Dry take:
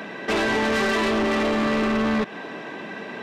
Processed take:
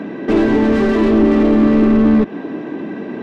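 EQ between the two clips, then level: tilt EQ -3 dB/octave; peaking EQ 300 Hz +11.5 dB 0.83 oct; 0.0 dB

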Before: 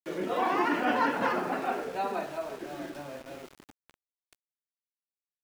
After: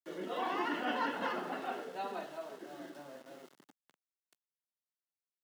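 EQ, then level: dynamic bell 3.1 kHz, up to +7 dB, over -51 dBFS, Q 1.6; high-pass 160 Hz 24 dB/octave; band-stop 2.4 kHz, Q 7.1; -8.5 dB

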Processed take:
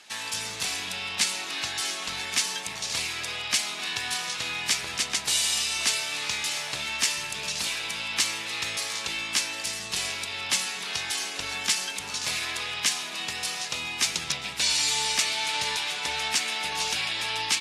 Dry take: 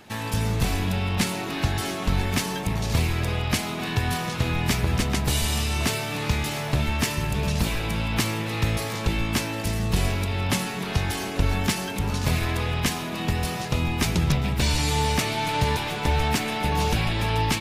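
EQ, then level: frequency weighting ITU-R 468; -6.0 dB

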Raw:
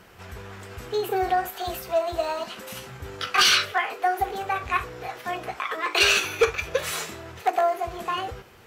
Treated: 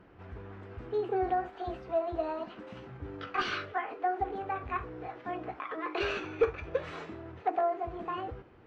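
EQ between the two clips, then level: peaking EQ 300 Hz +11 dB 0.26 oct; dynamic bell 3 kHz, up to -3 dB, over -30 dBFS, Q 0.98; tape spacing loss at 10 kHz 42 dB; -4.0 dB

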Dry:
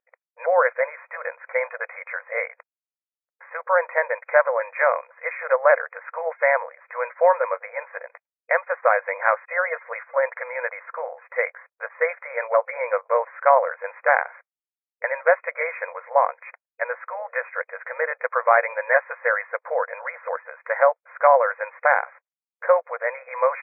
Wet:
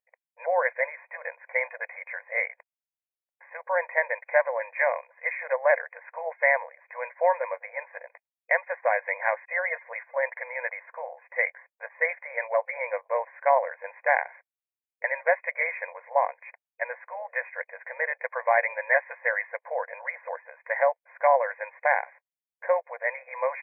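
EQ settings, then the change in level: dynamic bell 2 kHz, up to +5 dB, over -34 dBFS, Q 2.2; static phaser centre 1.3 kHz, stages 6; -3.5 dB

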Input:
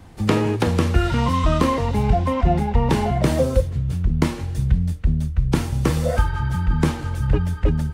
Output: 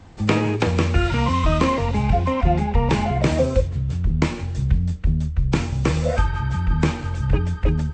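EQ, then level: hum notches 60/120/180/240/300/360/420 Hz; dynamic bell 2.4 kHz, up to +7 dB, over -52 dBFS, Q 5.3; brick-wall FIR low-pass 8.3 kHz; 0.0 dB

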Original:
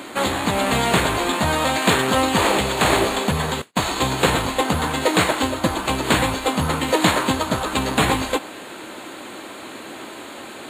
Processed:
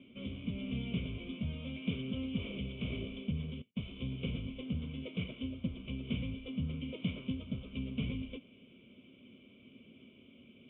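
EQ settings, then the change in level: cascade formant filter i; static phaser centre 740 Hz, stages 4; static phaser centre 2 kHz, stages 4; +1.5 dB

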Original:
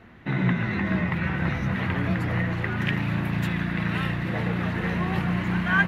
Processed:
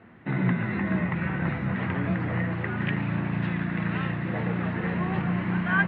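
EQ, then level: band-pass 110–4800 Hz; distance through air 330 m; 0.0 dB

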